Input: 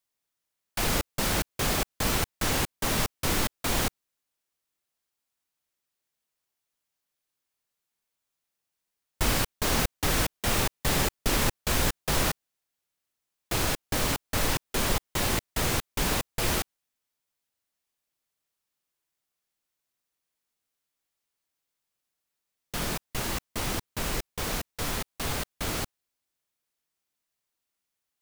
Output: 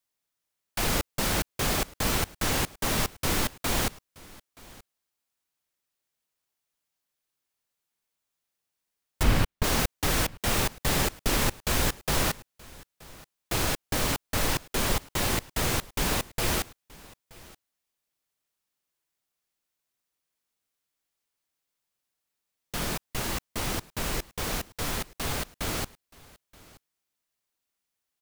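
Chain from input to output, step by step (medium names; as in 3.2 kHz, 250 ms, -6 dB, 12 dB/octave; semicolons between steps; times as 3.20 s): 9.23–9.64 s: tone controls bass +7 dB, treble -8 dB; on a send: delay 926 ms -22.5 dB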